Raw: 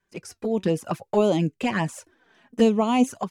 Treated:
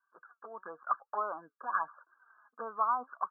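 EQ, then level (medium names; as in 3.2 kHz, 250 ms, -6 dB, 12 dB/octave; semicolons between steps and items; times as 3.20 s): resonant high-pass 1.2 kHz, resonance Q 6.5; brick-wall FIR low-pass 1.7 kHz; -8.5 dB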